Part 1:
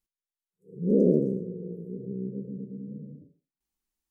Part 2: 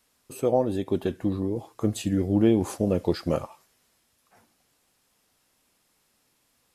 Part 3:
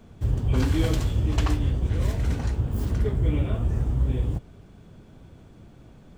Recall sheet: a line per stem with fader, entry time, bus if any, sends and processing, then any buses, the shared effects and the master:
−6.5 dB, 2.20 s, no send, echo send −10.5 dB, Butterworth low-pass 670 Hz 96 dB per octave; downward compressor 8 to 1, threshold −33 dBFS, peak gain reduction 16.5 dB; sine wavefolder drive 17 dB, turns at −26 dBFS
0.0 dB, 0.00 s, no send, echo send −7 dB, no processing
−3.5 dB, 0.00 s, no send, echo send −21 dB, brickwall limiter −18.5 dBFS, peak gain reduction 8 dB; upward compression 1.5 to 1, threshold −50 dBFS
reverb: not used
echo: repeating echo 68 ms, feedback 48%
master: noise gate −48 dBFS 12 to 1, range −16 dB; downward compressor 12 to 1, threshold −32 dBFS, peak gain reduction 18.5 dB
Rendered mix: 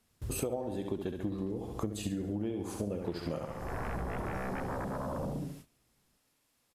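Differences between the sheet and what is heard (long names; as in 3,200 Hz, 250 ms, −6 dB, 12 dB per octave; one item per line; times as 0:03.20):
stem 2 0.0 dB → +9.0 dB
stem 3 −3.5 dB → −12.0 dB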